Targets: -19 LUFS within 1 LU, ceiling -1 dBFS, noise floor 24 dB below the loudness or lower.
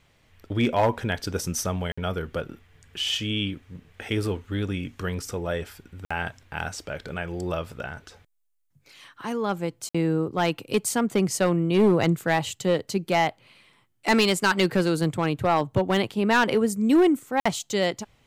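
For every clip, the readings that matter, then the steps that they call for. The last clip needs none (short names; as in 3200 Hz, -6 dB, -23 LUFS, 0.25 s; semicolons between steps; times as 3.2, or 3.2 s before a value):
clipped 0.5%; flat tops at -13.5 dBFS; dropouts 4; longest dropout 55 ms; loudness -25.0 LUFS; peak -13.5 dBFS; loudness target -19.0 LUFS
-> clip repair -13.5 dBFS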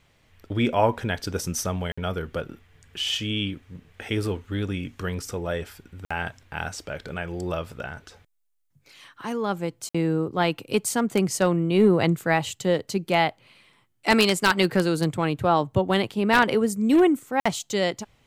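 clipped 0.0%; dropouts 4; longest dropout 55 ms
-> interpolate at 1.92/6.05/9.89/17.4, 55 ms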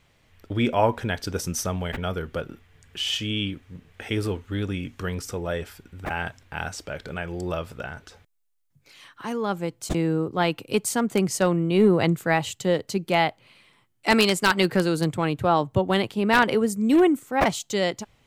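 dropouts 0; loudness -24.5 LUFS; peak -4.5 dBFS; loudness target -19.0 LUFS
-> gain +5.5 dB; limiter -1 dBFS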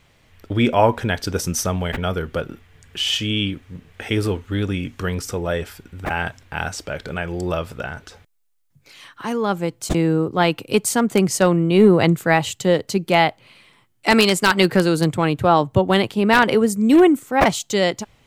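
loudness -19.0 LUFS; peak -1.0 dBFS; noise floor -59 dBFS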